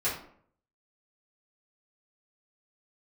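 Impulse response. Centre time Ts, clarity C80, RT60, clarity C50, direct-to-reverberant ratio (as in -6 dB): 35 ms, 9.5 dB, 0.60 s, 5.0 dB, -11.0 dB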